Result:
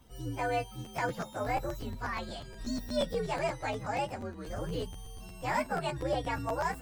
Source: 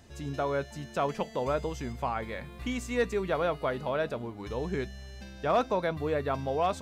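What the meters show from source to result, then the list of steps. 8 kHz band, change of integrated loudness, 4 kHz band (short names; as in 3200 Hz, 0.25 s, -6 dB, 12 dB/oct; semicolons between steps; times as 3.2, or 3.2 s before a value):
+0.5 dB, -3.0 dB, +0.5 dB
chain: inharmonic rescaling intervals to 130%; crackling interface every 0.12 s, samples 512, repeat, from 0.84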